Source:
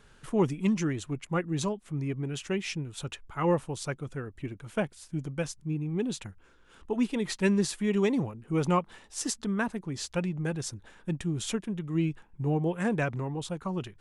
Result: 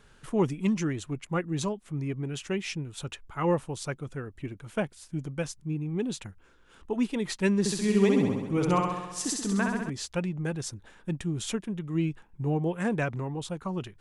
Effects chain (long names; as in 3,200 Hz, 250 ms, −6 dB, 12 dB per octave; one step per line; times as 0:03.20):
0:07.59–0:09.90: flutter between parallel walls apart 11.3 metres, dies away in 1.1 s